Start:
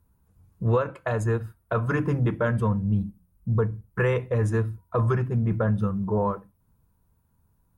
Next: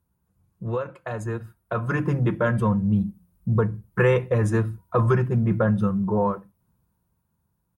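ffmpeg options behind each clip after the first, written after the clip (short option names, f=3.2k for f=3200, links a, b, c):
-af "highpass=56,aecho=1:1:5.6:0.33,dynaudnorm=f=350:g=11:m=11.5dB,volume=-5.5dB"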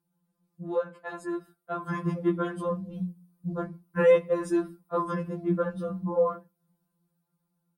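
-af "afftfilt=real='re*2.83*eq(mod(b,8),0)':imag='im*2.83*eq(mod(b,8),0)':win_size=2048:overlap=0.75,volume=-1.5dB"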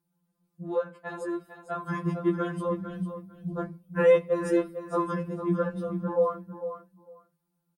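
-af "aecho=1:1:451|902:0.299|0.0478"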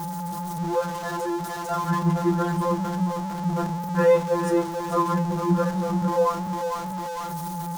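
-af "aeval=exprs='val(0)+0.5*0.0282*sgn(val(0))':c=same,aeval=exprs='val(0)+0.0158*sin(2*PI*860*n/s)':c=same,equalizer=f=160:t=o:w=0.67:g=6,equalizer=f=1k:t=o:w=0.67:g=6,equalizer=f=2.5k:t=o:w=0.67:g=-4,equalizer=f=6.3k:t=o:w=0.67:g=4"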